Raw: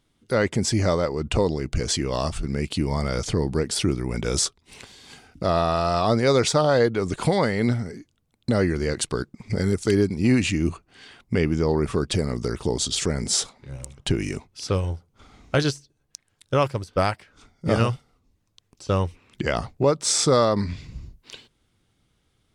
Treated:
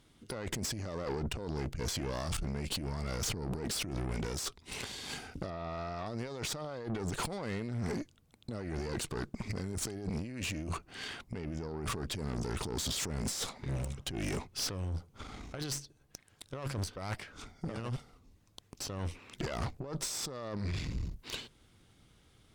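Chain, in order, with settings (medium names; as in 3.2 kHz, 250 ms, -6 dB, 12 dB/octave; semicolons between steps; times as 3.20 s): 18.98–19.55 s: bass shelf 210 Hz -6 dB; compressor with a negative ratio -32 dBFS, ratio -1; 5.50–6.06 s: distance through air 170 m; valve stage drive 31 dB, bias 0.65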